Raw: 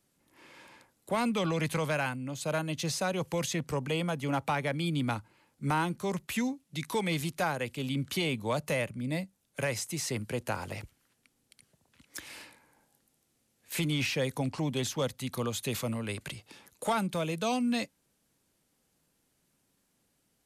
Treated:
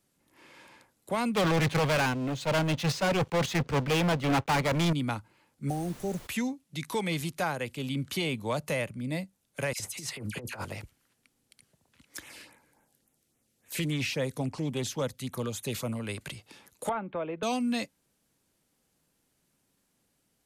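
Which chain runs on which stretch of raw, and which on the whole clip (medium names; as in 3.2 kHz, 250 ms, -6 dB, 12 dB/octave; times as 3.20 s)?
1.35–4.93 s: low-pass 4.1 kHz + waveshaping leveller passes 5 + gate -25 dBFS, range -11 dB
5.68–6.26 s: brick-wall FIR band-stop 820–5500 Hz + added noise pink -49 dBFS
9.73–10.65 s: phase dispersion lows, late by 67 ms, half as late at 1.7 kHz + compressor with a negative ratio -36 dBFS, ratio -0.5
12.20–16.00 s: LFO notch sine 3.6 Hz 800–4900 Hz + loudspeaker Doppler distortion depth 0.13 ms
16.89–17.43 s: Gaussian low-pass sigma 4.2 samples + peaking EQ 160 Hz -12 dB 1 oct + three bands compressed up and down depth 70%
whole clip: none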